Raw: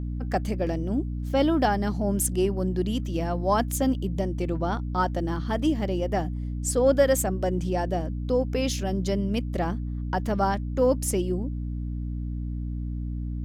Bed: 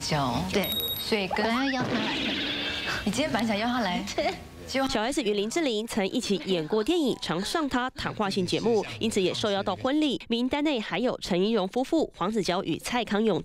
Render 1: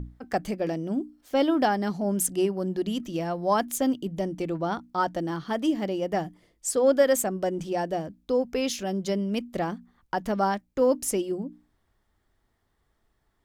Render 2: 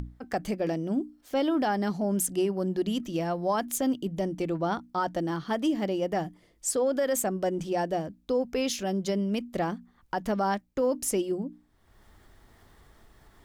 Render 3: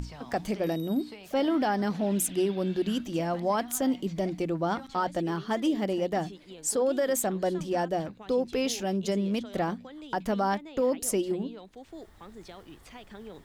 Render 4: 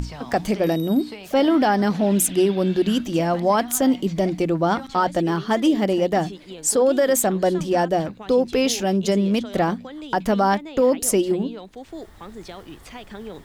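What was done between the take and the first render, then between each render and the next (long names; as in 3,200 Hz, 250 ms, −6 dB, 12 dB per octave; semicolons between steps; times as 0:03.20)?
mains-hum notches 60/120/180/240/300 Hz
brickwall limiter −18.5 dBFS, peak gain reduction 9.5 dB; upward compression, threshold −41 dBFS
mix in bed −20 dB
level +8.5 dB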